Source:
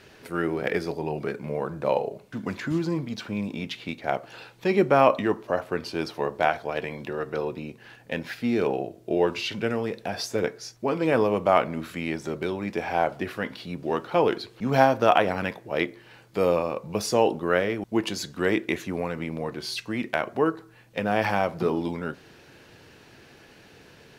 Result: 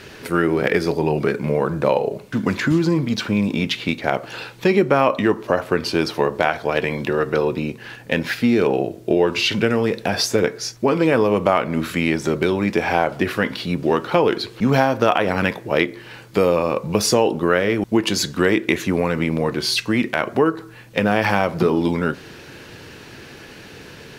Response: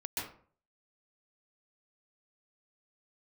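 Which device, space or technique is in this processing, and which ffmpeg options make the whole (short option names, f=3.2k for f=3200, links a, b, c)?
mastering chain: -af "equalizer=f=710:t=o:w=0.59:g=-4,acompressor=threshold=-26dB:ratio=3,alimiter=level_in=13dB:limit=-1dB:release=50:level=0:latency=1,volume=-1dB"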